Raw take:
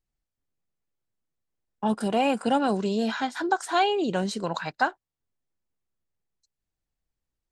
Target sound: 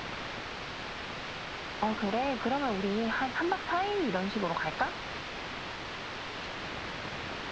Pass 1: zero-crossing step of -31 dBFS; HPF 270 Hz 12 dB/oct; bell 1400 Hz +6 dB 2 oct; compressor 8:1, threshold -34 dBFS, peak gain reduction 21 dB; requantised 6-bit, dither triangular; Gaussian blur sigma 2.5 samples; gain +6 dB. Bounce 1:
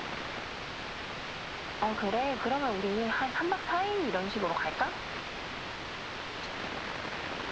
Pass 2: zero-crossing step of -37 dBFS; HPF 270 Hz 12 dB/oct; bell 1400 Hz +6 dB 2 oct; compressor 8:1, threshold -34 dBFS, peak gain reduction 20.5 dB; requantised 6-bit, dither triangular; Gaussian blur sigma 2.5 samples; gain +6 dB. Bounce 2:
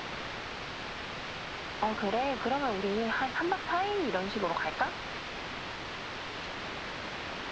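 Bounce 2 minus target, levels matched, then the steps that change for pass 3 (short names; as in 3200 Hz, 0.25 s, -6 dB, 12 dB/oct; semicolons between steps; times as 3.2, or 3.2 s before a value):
125 Hz band -2.5 dB
change: HPF 110 Hz 12 dB/oct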